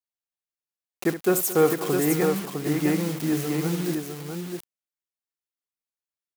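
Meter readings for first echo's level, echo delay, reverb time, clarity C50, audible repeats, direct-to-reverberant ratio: -12.0 dB, 68 ms, no reverb, no reverb, 4, no reverb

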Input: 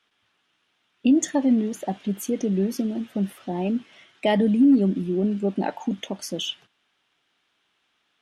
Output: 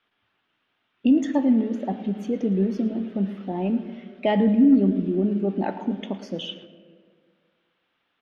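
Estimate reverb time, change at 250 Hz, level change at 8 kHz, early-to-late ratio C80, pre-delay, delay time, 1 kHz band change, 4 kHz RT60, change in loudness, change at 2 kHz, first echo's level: 1.8 s, +0.5 dB, under -15 dB, 11.5 dB, 3 ms, 111 ms, -0.5 dB, 0.95 s, +0.5 dB, -2.0 dB, -16.5 dB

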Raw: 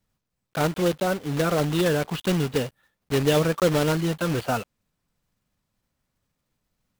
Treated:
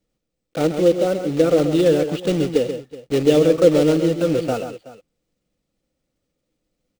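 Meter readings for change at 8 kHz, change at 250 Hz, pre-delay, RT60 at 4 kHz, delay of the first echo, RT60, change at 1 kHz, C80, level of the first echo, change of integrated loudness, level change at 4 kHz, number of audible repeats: -0.5 dB, +6.5 dB, no reverb, no reverb, 134 ms, no reverb, -1.5 dB, no reverb, -8.5 dB, +6.0 dB, +0.5 dB, 2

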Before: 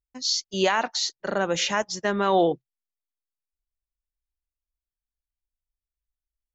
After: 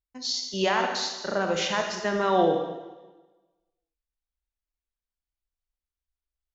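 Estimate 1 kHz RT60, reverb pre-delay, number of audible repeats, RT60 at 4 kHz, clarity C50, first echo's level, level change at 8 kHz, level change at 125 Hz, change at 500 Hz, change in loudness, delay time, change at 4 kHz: 1.2 s, 27 ms, no echo, 1.2 s, 4.5 dB, no echo, no reading, -1.0 dB, -0.5 dB, -2.0 dB, no echo, -2.5 dB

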